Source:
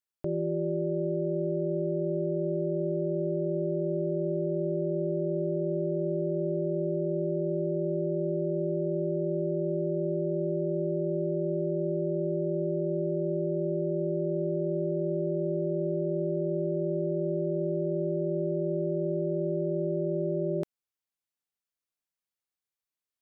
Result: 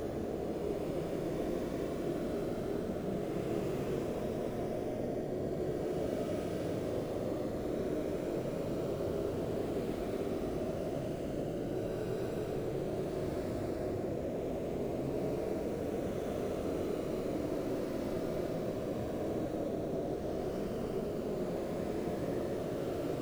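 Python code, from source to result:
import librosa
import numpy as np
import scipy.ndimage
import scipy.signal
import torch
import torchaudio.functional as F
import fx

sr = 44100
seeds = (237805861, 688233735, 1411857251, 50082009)

p1 = fx.dereverb_blind(x, sr, rt60_s=1.6)
p2 = fx.whisperise(p1, sr, seeds[0])
p3 = (np.mod(10.0 ** (27.5 / 20.0) * p2 + 1.0, 2.0) - 1.0) / 10.0 ** (27.5 / 20.0)
p4 = p2 + F.gain(torch.from_numpy(p3), -8.0).numpy()
p5 = fx.paulstretch(p4, sr, seeds[1], factor=7.5, window_s=0.25, from_s=11.3)
y = F.gain(torch.from_numpy(p5), -3.5).numpy()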